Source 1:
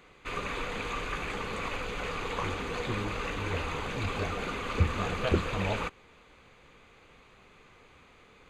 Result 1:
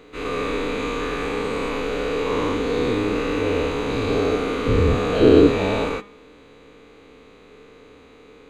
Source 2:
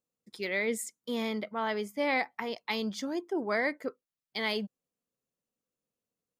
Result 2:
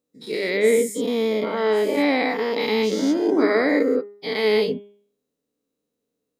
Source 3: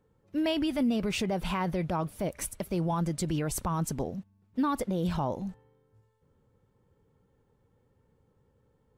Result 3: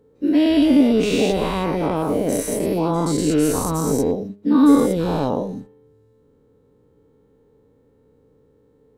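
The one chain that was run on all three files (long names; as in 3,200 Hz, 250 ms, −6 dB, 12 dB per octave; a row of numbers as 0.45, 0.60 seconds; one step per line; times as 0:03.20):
every bin's largest magnitude spread in time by 240 ms
hum removal 204 Hz, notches 17
hollow resonant body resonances 290/430/3,900 Hz, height 14 dB, ringing for 45 ms
level −1 dB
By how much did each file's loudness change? +11.5, +11.5, +12.5 LU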